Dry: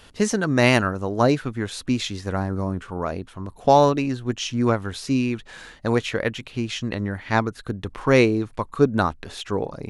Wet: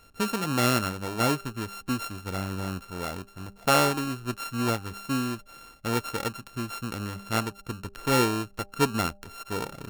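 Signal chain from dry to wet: sample sorter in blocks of 32 samples; de-hum 199.1 Hz, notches 4; gain -6.5 dB

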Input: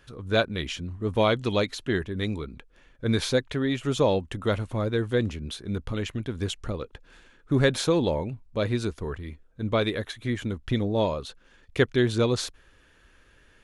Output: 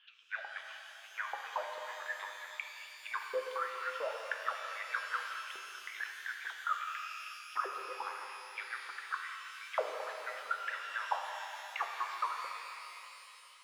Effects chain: HPF 100 Hz 12 dB/oct; high shelf 6800 Hz +7 dB; notches 60/120/180/240/300/360/420/480/540 Hz; soft clip -24 dBFS, distortion -9 dB; LFO high-pass saw up 4.5 Hz 900–3800 Hz; vocal rider within 4 dB 2 s; auto-wah 390–3200 Hz, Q 11, down, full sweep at -25 dBFS; air absorption 230 m; shimmer reverb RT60 3.1 s, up +12 st, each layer -8 dB, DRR 2 dB; gain +10 dB

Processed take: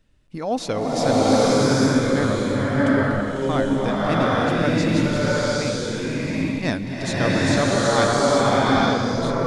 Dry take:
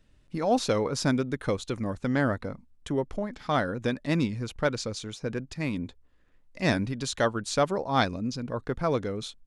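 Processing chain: bloom reverb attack 0.82 s, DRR -8.5 dB

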